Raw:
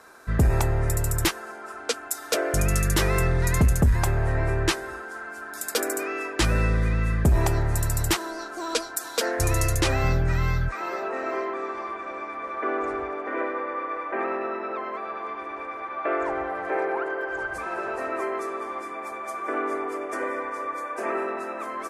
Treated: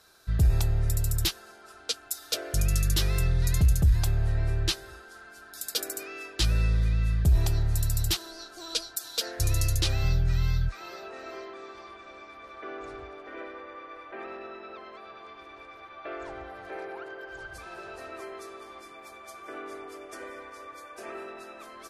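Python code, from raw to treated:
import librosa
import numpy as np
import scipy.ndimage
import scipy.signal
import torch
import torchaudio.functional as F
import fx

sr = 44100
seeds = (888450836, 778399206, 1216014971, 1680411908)

y = fx.graphic_eq(x, sr, hz=(250, 500, 1000, 2000, 4000, 8000), db=(-12, -8, -12, -10, 6, -6))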